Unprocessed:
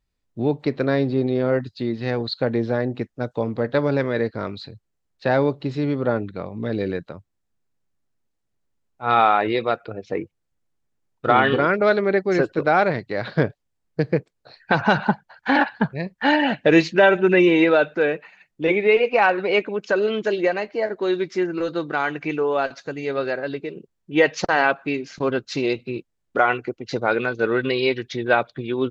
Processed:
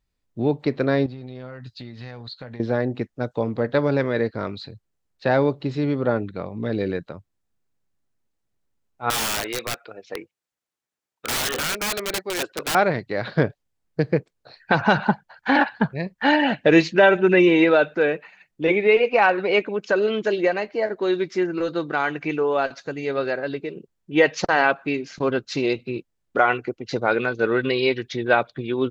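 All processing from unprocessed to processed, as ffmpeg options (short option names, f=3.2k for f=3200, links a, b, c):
-filter_complex "[0:a]asettb=1/sr,asplit=3[a][b][c];[a]atrim=end=1.064[d];[b]atrim=start=1.06:end=2.6,asetpts=PTS-STARTPTS,afade=t=in:d=0.004:c=qsin,afade=t=out:st=1.536:d=0.004:c=qsin,equalizer=f=350:w=0.89:g=-11,acompressor=threshold=-33dB:ratio=10:attack=3.2:release=140:knee=1:detection=peak,asplit=2[e][f];[f]adelay=16,volume=-11.5dB[g];[e][g]amix=inputs=2:normalize=0,atrim=end_sample=67914[h];[c]atrim=start=2.596[i];[d][h]acrossfade=d=0.004:c1=hsin:c2=qsin[j];[j][i]acrossfade=d=0.004:c1=qsin:c2=hsin,asettb=1/sr,asplit=3[k][l][m];[k]atrim=end=9.104[n];[l]atrim=start=9.1:end=12.75,asetpts=PTS-STARTPTS,afade=t=in:d=0.004:c=qsin,afade=t=out:st=3.646:d=0.004:c=qsin,highpass=f=930:p=1,aeval=exprs='(mod(8.91*val(0)+1,2)-1)/8.91':c=same[o];[m]atrim=start=12.746[p];[n][o]acrossfade=d=0.004:c1=hsin:c2=qsin[q];[q][p]acrossfade=d=0.004:c1=qsin:c2=hsin"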